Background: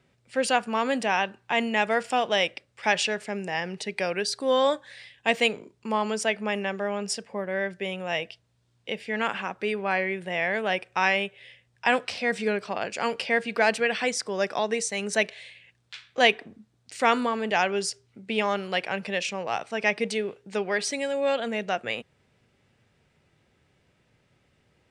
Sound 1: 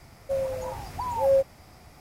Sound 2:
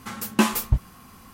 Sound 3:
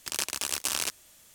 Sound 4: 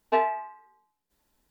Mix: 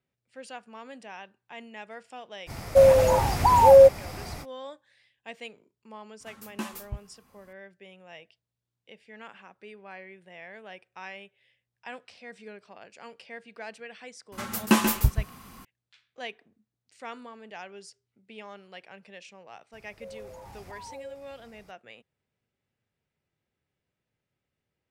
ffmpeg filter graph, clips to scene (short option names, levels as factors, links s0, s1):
-filter_complex "[1:a]asplit=2[s0][s1];[2:a]asplit=2[s2][s3];[0:a]volume=0.119[s4];[s0]alimiter=level_in=7.94:limit=0.891:release=50:level=0:latency=1[s5];[s3]aecho=1:1:135:0.447[s6];[s1]acompressor=threshold=0.0251:ratio=6:attack=0.37:release=52:knee=1:detection=peak[s7];[s5]atrim=end=2,asetpts=PTS-STARTPTS,volume=0.531,afade=t=in:d=0.05,afade=t=out:st=1.95:d=0.05,adelay=2460[s8];[s2]atrim=end=1.33,asetpts=PTS-STARTPTS,volume=0.168,afade=t=in:d=0.004:c=hsin,afade=t=out:st=1.326:d=0.004:c=hsin,adelay=6200[s9];[s6]atrim=end=1.33,asetpts=PTS-STARTPTS,volume=0.891,afade=t=in:d=0.004:c=hsin,afade=t=out:st=1.326:d=0.004:c=hsin,adelay=14320[s10];[s7]atrim=end=2,asetpts=PTS-STARTPTS,volume=0.376,afade=t=in:d=0.02,afade=t=out:st=1.98:d=0.02,adelay=869652S[s11];[s4][s8][s9][s10][s11]amix=inputs=5:normalize=0"